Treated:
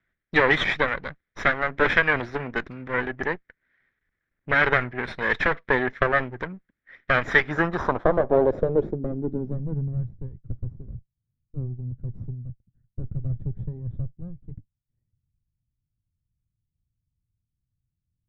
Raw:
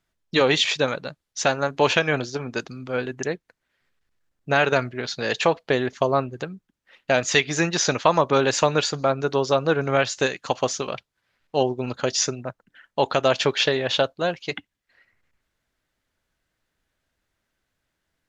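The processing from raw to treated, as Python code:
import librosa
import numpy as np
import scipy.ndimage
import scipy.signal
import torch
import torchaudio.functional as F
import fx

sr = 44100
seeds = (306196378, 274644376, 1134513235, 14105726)

y = fx.lower_of_two(x, sr, delay_ms=0.54)
y = fx.filter_sweep_lowpass(y, sr, from_hz=2000.0, to_hz=120.0, start_s=7.2, end_s=10.11, q=2.3)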